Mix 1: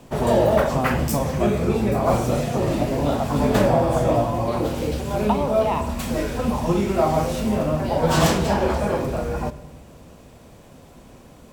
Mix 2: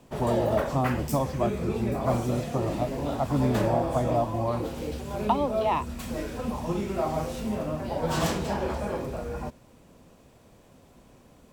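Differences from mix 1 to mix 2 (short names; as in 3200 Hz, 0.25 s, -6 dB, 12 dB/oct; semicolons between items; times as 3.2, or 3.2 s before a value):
background -8.0 dB; reverb: off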